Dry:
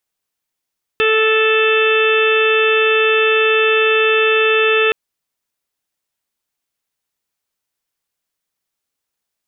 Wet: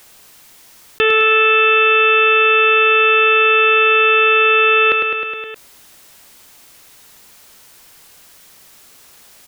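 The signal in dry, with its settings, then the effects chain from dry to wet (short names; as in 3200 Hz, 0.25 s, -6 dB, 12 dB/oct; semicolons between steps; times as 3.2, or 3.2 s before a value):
steady additive tone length 3.92 s, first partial 439 Hz, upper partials -19/-6.5/-6/-17/-2/-12.5/-11.5 dB, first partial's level -14 dB
on a send: feedback echo 0.104 s, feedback 54%, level -8 dB; on the sum: fast leveller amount 50%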